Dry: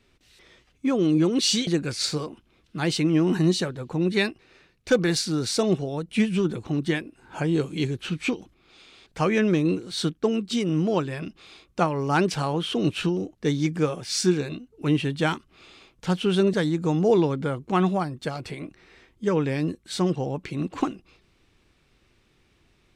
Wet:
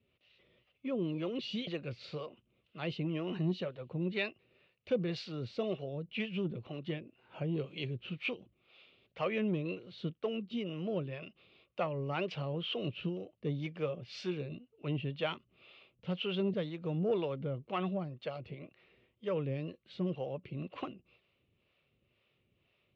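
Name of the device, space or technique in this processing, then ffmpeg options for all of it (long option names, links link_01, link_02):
guitar amplifier with harmonic tremolo: -filter_complex "[0:a]acrossover=split=430[link_01][link_02];[link_01]aeval=exprs='val(0)*(1-0.7/2+0.7/2*cos(2*PI*2*n/s))':channel_layout=same[link_03];[link_02]aeval=exprs='val(0)*(1-0.7/2-0.7/2*cos(2*PI*2*n/s))':channel_layout=same[link_04];[link_03][link_04]amix=inputs=2:normalize=0,asoftclip=type=tanh:threshold=-14.5dB,highpass=85,equalizer=frequency=120:width_type=q:width=4:gain=4,equalizer=frequency=300:width_type=q:width=4:gain=-6,equalizer=frequency=570:width_type=q:width=4:gain=8,equalizer=frequency=860:width_type=q:width=4:gain=-6,equalizer=frequency=1600:width_type=q:width=4:gain=-8,equalizer=frequency=2800:width_type=q:width=4:gain=7,lowpass=frequency=3600:width=0.5412,lowpass=frequency=3600:width=1.3066,volume=-8dB"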